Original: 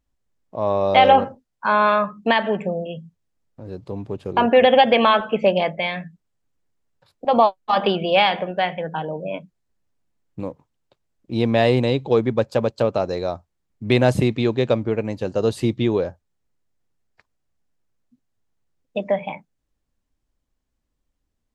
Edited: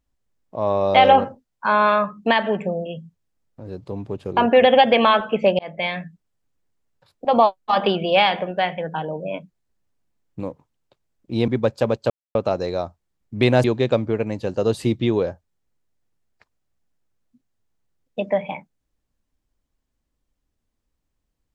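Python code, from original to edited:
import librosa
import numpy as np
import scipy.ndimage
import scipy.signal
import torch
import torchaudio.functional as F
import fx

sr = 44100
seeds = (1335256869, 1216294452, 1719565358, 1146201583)

y = fx.edit(x, sr, fx.fade_in_span(start_s=5.59, length_s=0.25),
    fx.cut(start_s=11.48, length_s=0.74),
    fx.insert_silence(at_s=12.84, length_s=0.25),
    fx.cut(start_s=14.13, length_s=0.29), tone=tone)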